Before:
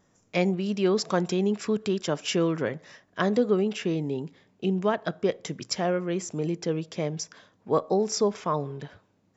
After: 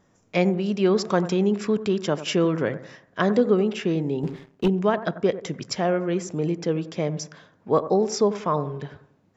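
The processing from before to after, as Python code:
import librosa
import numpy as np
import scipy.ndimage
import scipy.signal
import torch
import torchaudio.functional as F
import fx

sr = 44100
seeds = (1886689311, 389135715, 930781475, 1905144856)

p1 = fx.high_shelf(x, sr, hz=4900.0, db=-7.0)
p2 = p1 + fx.echo_bbd(p1, sr, ms=92, stages=1024, feedback_pct=38, wet_db=-13.5, dry=0)
p3 = fx.leveller(p2, sr, passes=2, at=(4.23, 4.68))
y = p3 * 10.0 ** (3.5 / 20.0)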